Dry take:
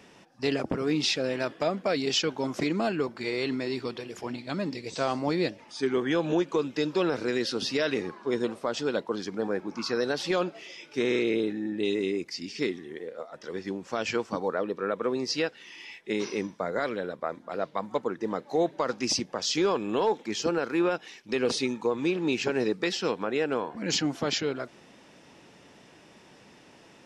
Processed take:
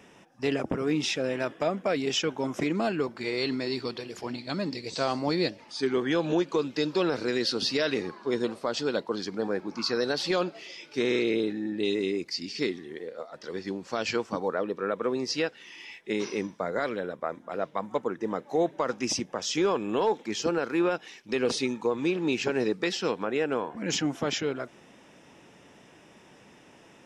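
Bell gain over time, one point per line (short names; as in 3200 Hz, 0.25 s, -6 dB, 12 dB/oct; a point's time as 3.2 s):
bell 4400 Hz 0.3 oct
-11.5 dB
from 2.75 s -1 dB
from 3.37 s +7 dB
from 14.19 s -2 dB
from 16.99 s -9.5 dB
from 20.01 s -2 dB
from 23.25 s -9.5 dB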